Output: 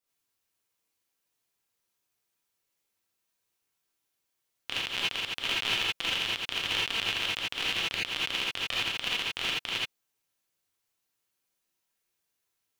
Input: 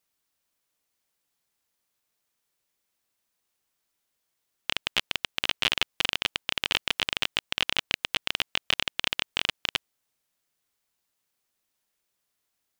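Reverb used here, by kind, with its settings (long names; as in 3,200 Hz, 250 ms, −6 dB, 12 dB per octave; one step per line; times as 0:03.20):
reverb whose tail is shaped and stops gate 100 ms rising, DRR −6.5 dB
level −9 dB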